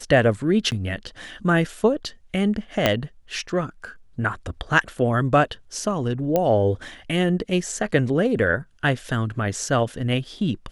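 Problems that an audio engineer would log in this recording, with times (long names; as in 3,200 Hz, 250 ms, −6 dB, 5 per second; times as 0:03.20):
0:00.71–0:00.72: drop-out 9.3 ms
0:02.86: click −3 dBFS
0:06.36: click −8 dBFS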